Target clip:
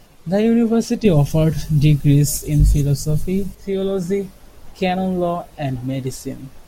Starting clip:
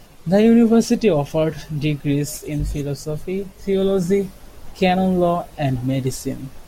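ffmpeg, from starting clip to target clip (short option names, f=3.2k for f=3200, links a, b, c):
-filter_complex "[0:a]asettb=1/sr,asplit=3[a][b][c];[a]atrim=end=1.054[d];[b]atrim=start=1.05:end=3.55,asetpts=PTS-STARTPTS,afade=t=in:d=0.004:c=qsin,afade=t=out:st=2.496:d=0.004:c=qsin,bass=f=250:g=14,treble=f=4k:g=11[e];[c]atrim=start=3.546[f];[d][e]acrossfade=d=0.004:c1=hsin:c2=qsin[g];[g][f]acrossfade=d=0.004:c1=qsin:c2=hsin,volume=-2.5dB"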